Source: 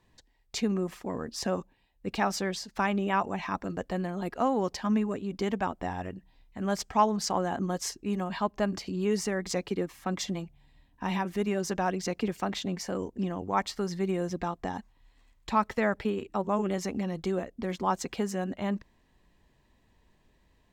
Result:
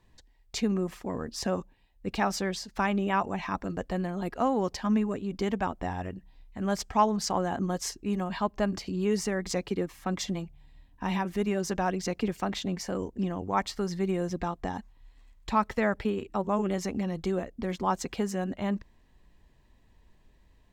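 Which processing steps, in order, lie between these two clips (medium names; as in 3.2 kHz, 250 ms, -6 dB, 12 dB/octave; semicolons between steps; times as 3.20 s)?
bass shelf 73 Hz +9 dB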